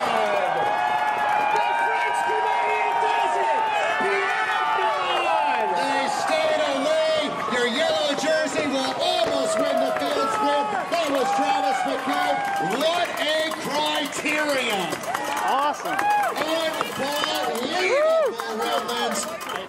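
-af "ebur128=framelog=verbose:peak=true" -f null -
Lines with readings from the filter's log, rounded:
Integrated loudness:
  I:         -22.4 LUFS
  Threshold: -32.4 LUFS
Loudness range:
  LRA:         1.6 LU
  Threshold: -42.4 LUFS
  LRA low:   -23.2 LUFS
  LRA high:  -21.6 LUFS
True peak:
  Peak:       -6.2 dBFS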